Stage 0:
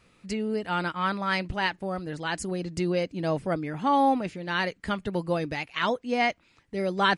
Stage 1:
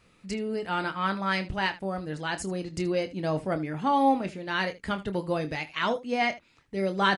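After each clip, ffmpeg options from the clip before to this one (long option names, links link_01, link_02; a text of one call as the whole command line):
ffmpeg -i in.wav -af "acontrast=47,aecho=1:1:26|77:0.316|0.133,volume=-7dB" out.wav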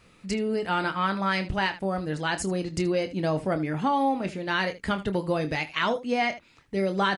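ffmpeg -i in.wav -af "acompressor=threshold=-26dB:ratio=4,volume=4.5dB" out.wav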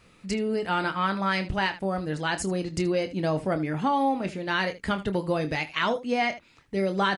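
ffmpeg -i in.wav -af anull out.wav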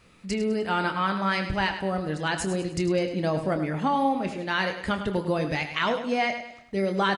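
ffmpeg -i in.wav -af "aecho=1:1:102|204|306|408:0.316|0.133|0.0558|0.0234" out.wav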